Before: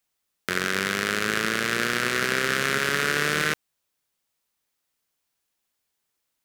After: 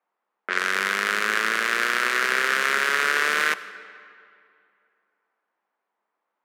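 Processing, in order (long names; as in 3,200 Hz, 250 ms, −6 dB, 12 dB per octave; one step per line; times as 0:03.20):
mu-law and A-law mismatch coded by mu
Chebyshev high-pass filter 200 Hz, order 5
low-pass that shuts in the quiet parts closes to 990 Hz, open at −21.5 dBFS
octave-band graphic EQ 250/1,000/2,000 Hz −9/+7/+4 dB
convolution reverb RT60 2.5 s, pre-delay 45 ms, DRR 15 dB
level −2 dB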